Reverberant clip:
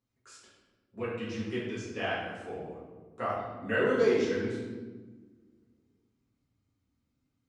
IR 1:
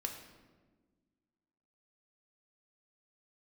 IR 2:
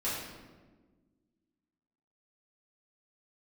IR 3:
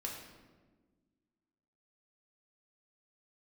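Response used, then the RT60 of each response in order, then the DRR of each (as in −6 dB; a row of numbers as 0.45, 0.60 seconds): 2; 1.4, 1.4, 1.4 seconds; 3.0, −10.5, −1.5 decibels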